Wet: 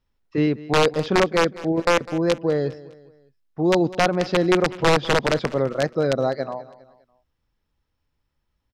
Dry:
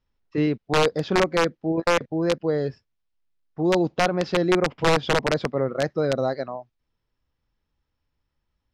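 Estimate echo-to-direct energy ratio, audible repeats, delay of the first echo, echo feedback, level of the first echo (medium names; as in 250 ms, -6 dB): -17.5 dB, 3, 203 ms, 43%, -18.5 dB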